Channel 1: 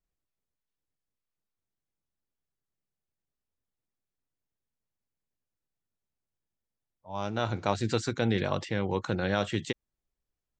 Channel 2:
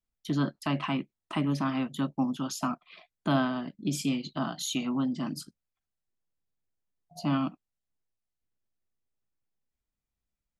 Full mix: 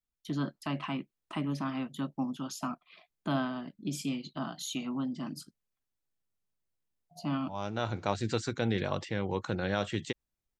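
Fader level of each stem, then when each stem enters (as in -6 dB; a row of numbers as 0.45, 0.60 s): -3.0, -5.0 dB; 0.40, 0.00 s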